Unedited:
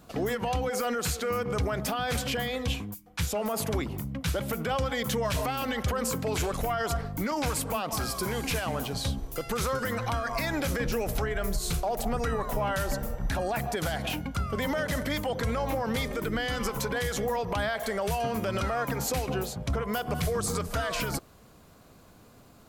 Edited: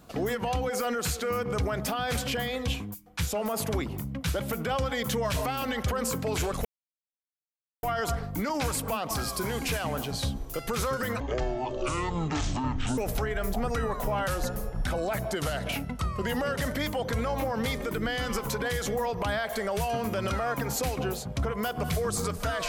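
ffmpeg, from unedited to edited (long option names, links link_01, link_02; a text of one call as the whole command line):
ffmpeg -i in.wav -filter_complex "[0:a]asplit=7[link_01][link_02][link_03][link_04][link_05][link_06][link_07];[link_01]atrim=end=6.65,asetpts=PTS-STARTPTS,afade=type=out:start_time=6.646:duration=0.004:curve=hsin,apad=pad_dur=1.18[link_08];[link_02]atrim=start=6.65:end=10.024,asetpts=PTS-STARTPTS,afade=type=in:duration=0.004:curve=hsin[link_09];[link_03]atrim=start=10.02:end=10.98,asetpts=PTS-STARTPTS,asetrate=23814,aresample=44100[link_10];[link_04]atrim=start=10.976:end=11.542[link_11];[link_05]atrim=start=12.028:end=12.774[link_12];[link_06]atrim=start=12.77:end=14.92,asetpts=PTS-STARTPTS,asetrate=40572,aresample=44100[link_13];[link_07]atrim=start=14.916[link_14];[link_08][link_09]concat=n=2:v=0:a=1[link_15];[link_15][link_10]acrossfade=duration=0.004:curve1=hsin:curve2=hsin[link_16];[link_16][link_11]acrossfade=duration=0.004:curve1=hsin:curve2=hsin[link_17];[link_17][link_12]acrossfade=duration=0.004:curve1=hsin:curve2=hsin[link_18];[link_18][link_13]acrossfade=duration=0.004:curve1=hsin:curve2=hsin[link_19];[link_19][link_14]acrossfade=duration=0.004:curve1=hsin:curve2=hsin" out.wav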